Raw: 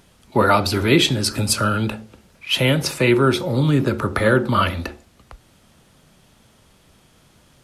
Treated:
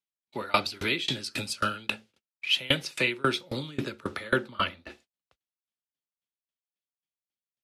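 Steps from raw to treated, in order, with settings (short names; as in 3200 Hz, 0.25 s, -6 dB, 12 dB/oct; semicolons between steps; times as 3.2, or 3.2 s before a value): weighting filter D; gate -41 dBFS, range -40 dB; 4.47–4.89 high shelf 3200 Hz -> 2100 Hz -10.5 dB; dB-ramp tremolo decaying 3.7 Hz, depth 27 dB; gain -5.5 dB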